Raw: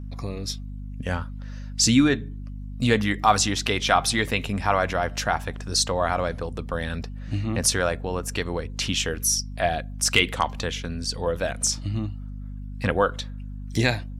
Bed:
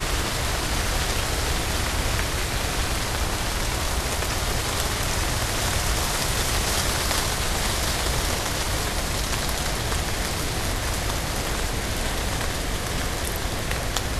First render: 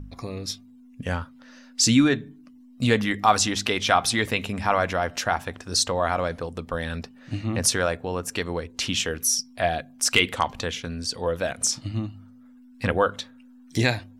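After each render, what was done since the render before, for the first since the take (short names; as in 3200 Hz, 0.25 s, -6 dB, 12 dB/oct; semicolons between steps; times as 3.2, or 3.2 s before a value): de-hum 50 Hz, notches 4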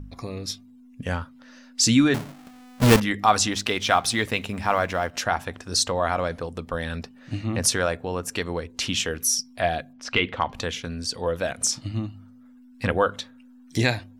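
2.14–3 half-waves squared off; 3.52–5.14 G.711 law mismatch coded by A; 9.93–10.53 air absorption 240 m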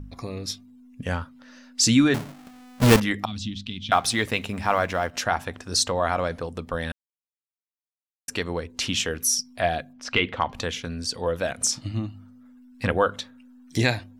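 3.25–3.92 EQ curve 230 Hz 0 dB, 470 Hz -30 dB, 1600 Hz -27 dB, 3400 Hz -5 dB, 5600 Hz -17 dB, 12000 Hz -28 dB; 6.92–8.28 mute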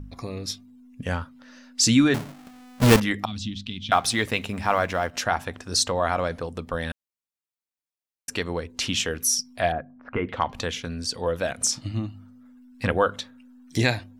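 9.72–10.29 LPF 1600 Hz 24 dB/oct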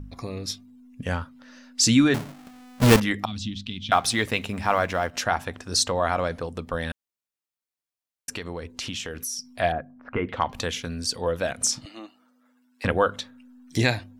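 8.31–9.45 compressor 5:1, threshold -29 dBFS; 10.45–11.18 high shelf 9500 Hz +8.5 dB; 11.85–12.85 HPF 370 Hz 24 dB/oct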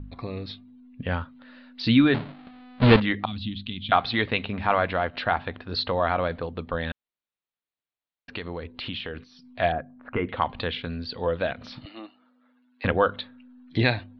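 steep low-pass 4300 Hz 72 dB/oct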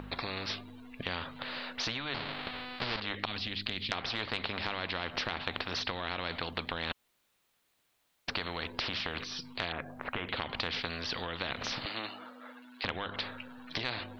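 compressor 6:1, threshold -28 dBFS, peak gain reduction 15.5 dB; spectral compressor 4:1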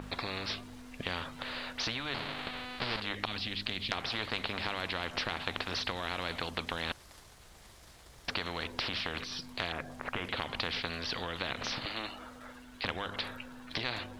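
add bed -31.5 dB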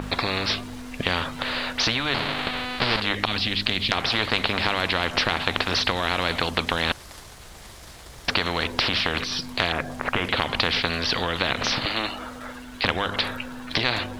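gain +12 dB; limiter -2 dBFS, peak gain reduction 2 dB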